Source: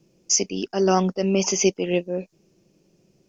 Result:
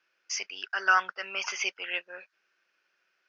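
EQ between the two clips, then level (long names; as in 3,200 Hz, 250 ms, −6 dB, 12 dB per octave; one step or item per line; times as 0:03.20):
high-pass with resonance 1,500 Hz, resonance Q 6.4
high-frequency loss of the air 300 metres
spectral tilt +1.5 dB per octave
0.0 dB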